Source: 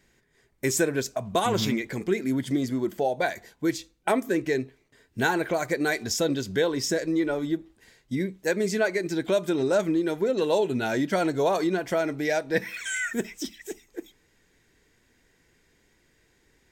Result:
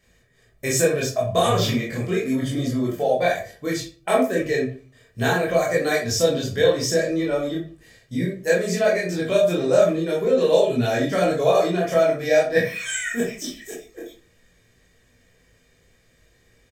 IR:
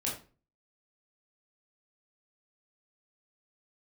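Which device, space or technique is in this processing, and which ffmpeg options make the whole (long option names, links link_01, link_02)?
microphone above a desk: -filter_complex "[0:a]aecho=1:1:1.7:0.55[link_01];[1:a]atrim=start_sample=2205[link_02];[link_01][link_02]afir=irnorm=-1:irlink=0"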